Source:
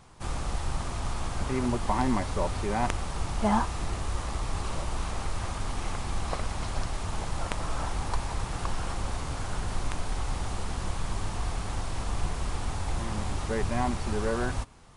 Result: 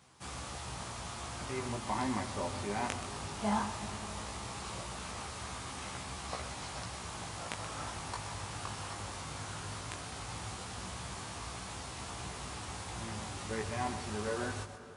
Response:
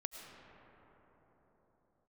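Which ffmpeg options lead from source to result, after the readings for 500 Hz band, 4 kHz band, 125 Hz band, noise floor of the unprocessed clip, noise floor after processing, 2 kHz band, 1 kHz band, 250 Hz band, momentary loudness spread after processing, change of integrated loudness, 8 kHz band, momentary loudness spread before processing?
-7.0 dB, -2.5 dB, -10.0 dB, -36 dBFS, -44 dBFS, -4.5 dB, -6.5 dB, -8.0 dB, 7 LU, -7.0 dB, -2.0 dB, 6 LU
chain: -filter_complex "[0:a]highpass=f=74:w=0.5412,highpass=f=74:w=1.3066,tiltshelf=f=1.5k:g=-3.5,flanger=delay=15.5:depth=4.3:speed=0.17,asplit=2[a][b];[1:a]atrim=start_sample=2205,adelay=127[c];[b][c]afir=irnorm=-1:irlink=0,volume=-7dB[d];[a][d]amix=inputs=2:normalize=0,volume=-2.5dB"

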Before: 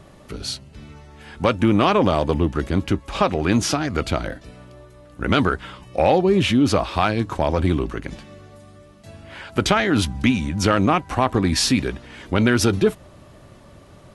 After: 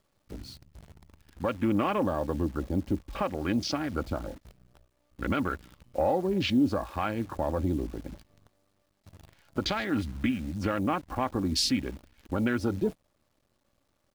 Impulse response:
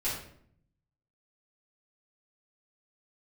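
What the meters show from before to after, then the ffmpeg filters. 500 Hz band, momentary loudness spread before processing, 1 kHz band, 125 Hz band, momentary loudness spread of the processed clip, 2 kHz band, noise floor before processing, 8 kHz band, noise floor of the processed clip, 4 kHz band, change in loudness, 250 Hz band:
-10.5 dB, 13 LU, -10.5 dB, -11.5 dB, 14 LU, -11.5 dB, -47 dBFS, -12.5 dB, -74 dBFS, -9.5 dB, -9.5 dB, -8.5 dB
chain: -af "afwtdn=0.0447,equalizer=f=4.6k:w=2.7:g=6,aecho=1:1:3.6:0.34,alimiter=limit=-8dB:level=0:latency=1:release=489,acrusher=bits=8:dc=4:mix=0:aa=0.000001,volume=-8dB"

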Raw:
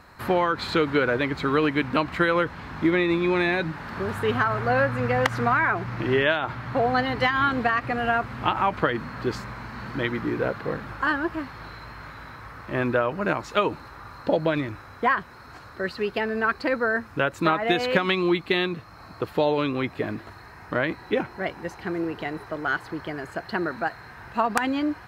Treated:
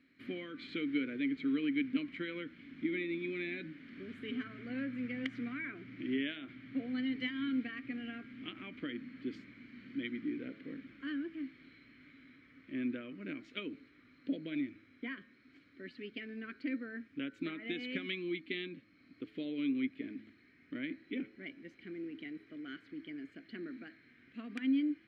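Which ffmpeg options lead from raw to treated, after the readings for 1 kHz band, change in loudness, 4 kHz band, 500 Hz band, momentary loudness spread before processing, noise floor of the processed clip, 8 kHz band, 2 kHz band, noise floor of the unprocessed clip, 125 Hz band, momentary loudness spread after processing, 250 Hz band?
-32.5 dB, -15.0 dB, -14.0 dB, -21.5 dB, 13 LU, -65 dBFS, n/a, -18.0 dB, -45 dBFS, -22.5 dB, 14 LU, -8.5 dB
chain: -filter_complex "[0:a]asplit=3[a][b][c];[a]bandpass=f=270:t=q:w=8,volume=0dB[d];[b]bandpass=f=2.29k:t=q:w=8,volume=-6dB[e];[c]bandpass=f=3.01k:t=q:w=8,volume=-9dB[f];[d][e][f]amix=inputs=3:normalize=0,bandreject=f=107.8:t=h:w=4,bandreject=f=215.6:t=h:w=4,bandreject=f=323.4:t=h:w=4,bandreject=f=431.2:t=h:w=4,bandreject=f=539:t=h:w=4,bandreject=f=646.8:t=h:w=4,bandreject=f=754.6:t=h:w=4,bandreject=f=862.4:t=h:w=4,bandreject=f=970.2:t=h:w=4,bandreject=f=1.078k:t=h:w=4,bandreject=f=1.1858k:t=h:w=4,bandreject=f=1.2936k:t=h:w=4,bandreject=f=1.4014k:t=h:w=4,bandreject=f=1.5092k:t=h:w=4,bandreject=f=1.617k:t=h:w=4,bandreject=f=1.7248k:t=h:w=4,bandreject=f=1.8326k:t=h:w=4,volume=-2.5dB"

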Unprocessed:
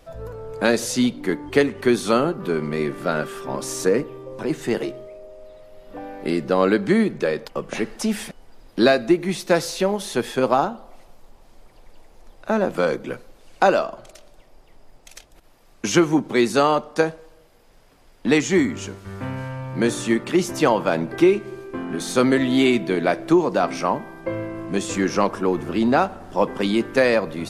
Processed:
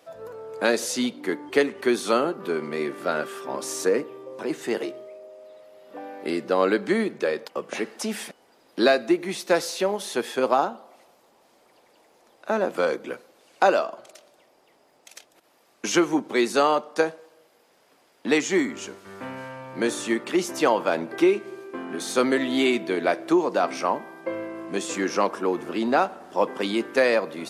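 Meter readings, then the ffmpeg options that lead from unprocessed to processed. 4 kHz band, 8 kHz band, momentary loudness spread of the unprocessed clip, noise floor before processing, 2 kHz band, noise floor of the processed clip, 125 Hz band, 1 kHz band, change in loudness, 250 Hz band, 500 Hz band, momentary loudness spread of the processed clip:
-2.0 dB, -2.0 dB, 13 LU, -52 dBFS, -2.0 dB, -61 dBFS, -12.5 dB, -2.0 dB, -3.0 dB, -5.5 dB, -2.5 dB, 15 LU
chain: -af "highpass=290,volume=-2dB"

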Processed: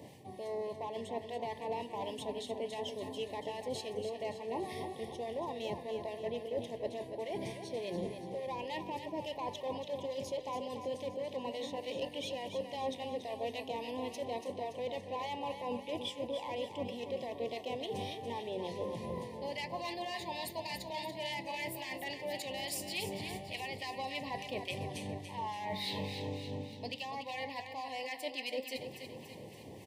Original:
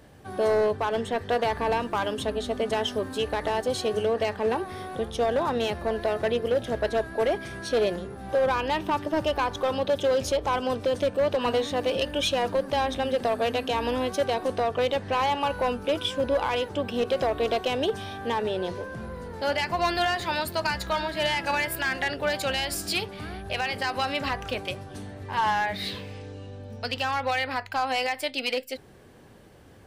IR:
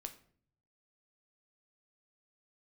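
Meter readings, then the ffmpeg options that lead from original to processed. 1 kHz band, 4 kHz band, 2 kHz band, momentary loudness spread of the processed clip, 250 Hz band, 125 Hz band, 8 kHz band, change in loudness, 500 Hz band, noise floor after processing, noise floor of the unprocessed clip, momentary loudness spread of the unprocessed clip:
-13.0 dB, -11.5 dB, -15.0 dB, 3 LU, -10.5 dB, -10.0 dB, -10.0 dB, -13.0 dB, -13.0 dB, -49 dBFS, -45 dBFS, 8 LU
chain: -filter_complex "[0:a]highpass=f=99:w=0.5412,highpass=f=99:w=1.3066,areverse,acompressor=threshold=-38dB:ratio=12,areverse,acrossover=split=1200[a][b];[a]aeval=exprs='val(0)*(1-0.5/2+0.5/2*cos(2*PI*3.5*n/s))':c=same[c];[b]aeval=exprs='val(0)*(1-0.5/2-0.5/2*cos(2*PI*3.5*n/s))':c=same[d];[c][d]amix=inputs=2:normalize=0,asuperstop=centerf=1400:order=12:qfactor=1.9,aecho=1:1:285|570|855|1140|1425|1710:0.376|0.199|0.106|0.056|0.0297|0.0157,asplit=2[e][f];[1:a]atrim=start_sample=2205[g];[f][g]afir=irnorm=-1:irlink=0,volume=-3dB[h];[e][h]amix=inputs=2:normalize=0,volume=1dB"

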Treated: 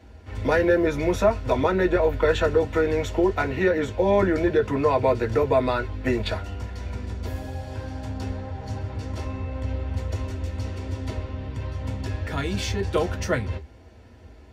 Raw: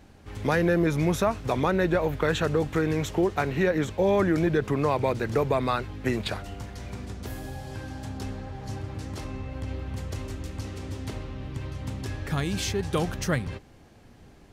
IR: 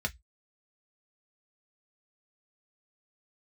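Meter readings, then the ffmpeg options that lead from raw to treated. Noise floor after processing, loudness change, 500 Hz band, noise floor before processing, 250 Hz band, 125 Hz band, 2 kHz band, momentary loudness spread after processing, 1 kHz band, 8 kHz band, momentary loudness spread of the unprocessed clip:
-47 dBFS, +3.0 dB, +4.5 dB, -52 dBFS, +1.0 dB, +1.5 dB, +2.5 dB, 12 LU, +2.5 dB, n/a, 14 LU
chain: -filter_complex "[0:a]equalizer=f=160:t=o:w=0.67:g=-12,equalizer=f=400:t=o:w=0.67:g=8,equalizer=f=1k:t=o:w=0.67:g=4[a];[1:a]atrim=start_sample=2205[b];[a][b]afir=irnorm=-1:irlink=0,volume=-3.5dB"

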